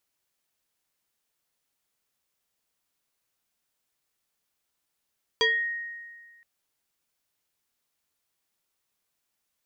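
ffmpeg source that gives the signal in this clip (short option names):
-f lavfi -i "aevalsrc='0.126*pow(10,-3*t/1.66)*sin(2*PI*1870*t+2.2*pow(10,-3*t/0.33)*sin(2*PI*0.76*1870*t))':d=1.02:s=44100"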